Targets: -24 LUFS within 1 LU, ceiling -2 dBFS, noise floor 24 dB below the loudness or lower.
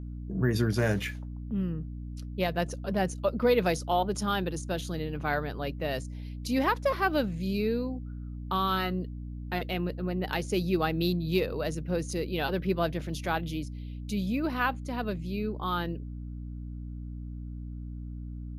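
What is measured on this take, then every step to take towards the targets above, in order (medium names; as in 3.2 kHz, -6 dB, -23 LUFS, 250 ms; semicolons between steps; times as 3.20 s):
hum 60 Hz; highest harmonic 300 Hz; hum level -36 dBFS; loudness -31.0 LUFS; peak level -12.5 dBFS; loudness target -24.0 LUFS
-> hum notches 60/120/180/240/300 Hz; trim +7 dB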